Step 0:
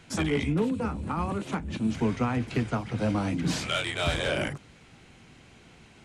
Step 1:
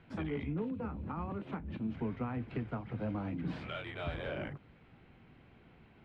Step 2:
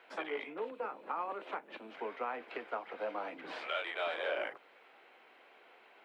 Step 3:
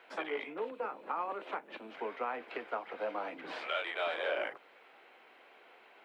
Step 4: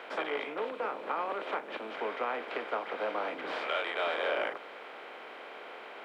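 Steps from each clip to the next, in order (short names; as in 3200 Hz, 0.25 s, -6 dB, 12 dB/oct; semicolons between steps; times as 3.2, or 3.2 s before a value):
compressor 1.5:1, threshold -35 dBFS, peak gain reduction 5.5 dB; air absorption 450 m; gain -5 dB
HPF 470 Hz 24 dB/oct; gain +6 dB
bell 86 Hz +2.5 dB; gain +1.5 dB
per-bin compression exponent 0.6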